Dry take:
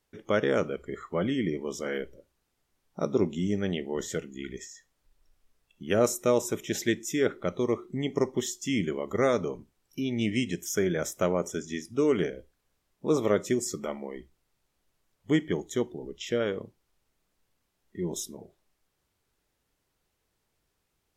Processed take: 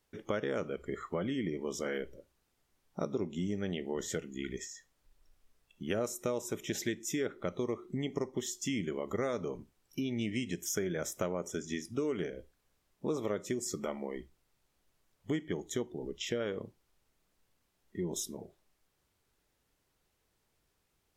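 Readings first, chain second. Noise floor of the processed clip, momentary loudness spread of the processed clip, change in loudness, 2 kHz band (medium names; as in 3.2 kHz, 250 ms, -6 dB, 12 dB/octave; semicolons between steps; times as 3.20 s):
-78 dBFS, 9 LU, -7.5 dB, -7.0 dB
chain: compression 4:1, threshold -32 dBFS, peak gain reduction 12 dB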